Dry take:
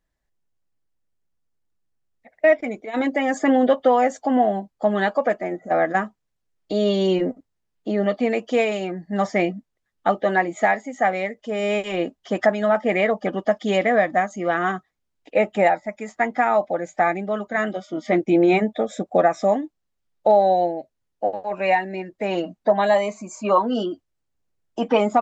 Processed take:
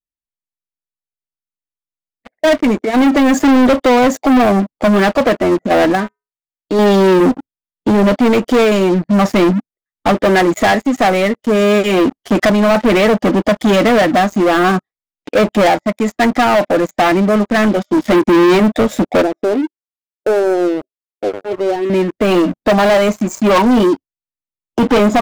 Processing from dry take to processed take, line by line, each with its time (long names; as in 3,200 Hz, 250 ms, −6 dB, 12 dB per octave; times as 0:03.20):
0:05.95–0:06.79: tuned comb filter 140 Hz, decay 0.31 s, harmonics odd, mix 70%
0:19.22–0:21.90: resonant band-pass 390 Hz, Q 4.6
whole clip: noise reduction from a noise print of the clip's start 13 dB; drawn EQ curve 160 Hz 0 dB, 270 Hz +4 dB, 670 Hz −5 dB; leveller curve on the samples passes 5